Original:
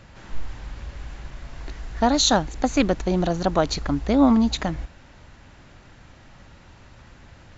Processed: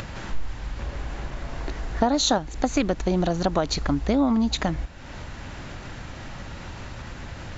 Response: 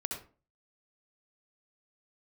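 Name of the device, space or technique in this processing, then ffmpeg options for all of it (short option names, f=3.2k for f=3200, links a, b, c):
upward and downward compression: -filter_complex "[0:a]asettb=1/sr,asplit=3[a][b][c];[a]atrim=end=0.794[d];[b]atrim=start=0.79:end=2.38,asetpts=PTS-STARTPTS,afade=t=in:d=0.004:c=qsin,afade=t=out:st=1.586:d=0.004:c=qsin,equalizer=f=490:t=o:w=3:g=6[e];[c]atrim=start=2.376[f];[d][e]acrossfade=d=0.004:c1=hsin:c2=qsin[g];[g][f]acrossfade=d=0.004:c1=qsin:c2=hsin,acompressor=mode=upward:threshold=-28dB:ratio=2.5,acompressor=threshold=-20dB:ratio=6,volume=2dB"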